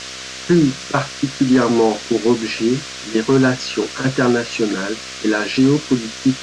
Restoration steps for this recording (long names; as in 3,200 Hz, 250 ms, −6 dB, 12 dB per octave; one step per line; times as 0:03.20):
hum removal 64.5 Hz, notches 11
noise reduction from a noise print 30 dB